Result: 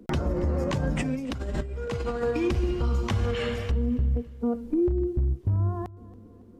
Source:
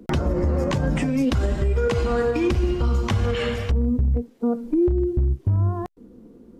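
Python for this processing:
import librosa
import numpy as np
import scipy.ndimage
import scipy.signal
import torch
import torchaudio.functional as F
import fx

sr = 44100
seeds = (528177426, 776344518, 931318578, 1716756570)

y = fx.over_compress(x, sr, threshold_db=-24.0, ratio=-0.5, at=(0.92, 2.24))
y = fx.echo_feedback(y, sr, ms=278, feedback_pct=49, wet_db=-21.0)
y = y * 10.0 ** (-4.5 / 20.0)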